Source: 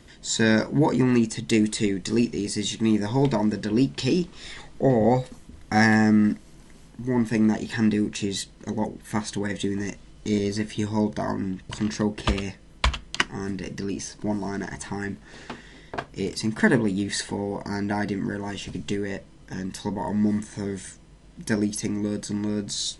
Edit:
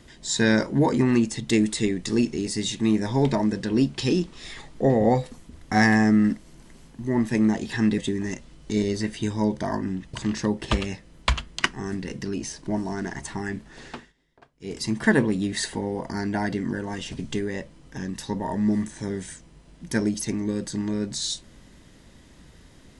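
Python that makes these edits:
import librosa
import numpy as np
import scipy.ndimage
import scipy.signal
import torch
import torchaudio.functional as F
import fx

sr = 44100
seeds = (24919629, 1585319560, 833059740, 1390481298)

y = fx.edit(x, sr, fx.cut(start_s=7.98, length_s=1.56),
    fx.fade_down_up(start_s=15.48, length_s=0.88, db=-23.0, fade_s=0.21), tone=tone)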